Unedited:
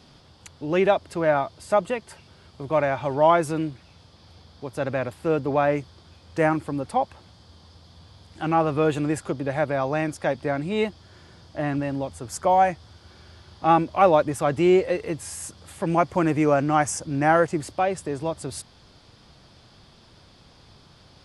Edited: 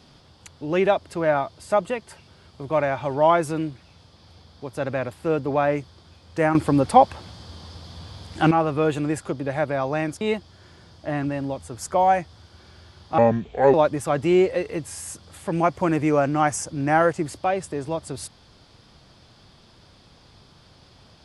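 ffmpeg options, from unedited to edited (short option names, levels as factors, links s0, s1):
-filter_complex "[0:a]asplit=6[s0][s1][s2][s3][s4][s5];[s0]atrim=end=6.552[s6];[s1]atrim=start=6.548:end=8.512,asetpts=PTS-STARTPTS,volume=2.99[s7];[s2]atrim=start=8.508:end=10.212[s8];[s3]atrim=start=10.718:end=13.694[s9];[s4]atrim=start=13.69:end=14.08,asetpts=PTS-STARTPTS,asetrate=30870,aresample=44100[s10];[s5]atrim=start=14.076[s11];[s6][s7]acrossfade=d=0.004:c1=hsin:c2=hsin[s12];[s12][s8]acrossfade=d=0.004:c1=hsin:c2=hsin[s13];[s13][s9]acrossfade=d=0.004:c1=hsin:c2=hsin[s14];[s14][s10]acrossfade=d=0.004:c1=hsin:c2=hsin[s15];[s15][s11]acrossfade=d=0.004:c1=hsin:c2=hsin"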